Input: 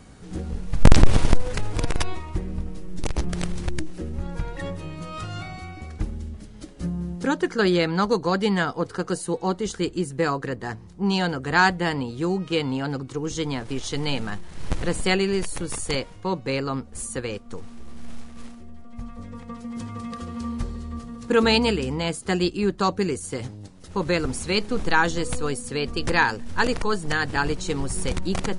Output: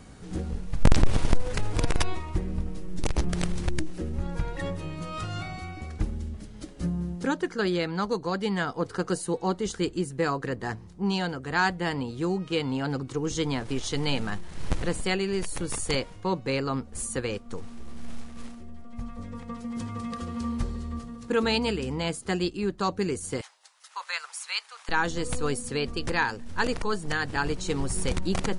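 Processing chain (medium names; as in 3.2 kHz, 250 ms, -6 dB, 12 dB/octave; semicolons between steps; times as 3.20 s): gain riding within 3 dB 0.5 s; 23.41–24.89 s: inverse Chebyshev high-pass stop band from 280 Hz, stop band 60 dB; trim -3.5 dB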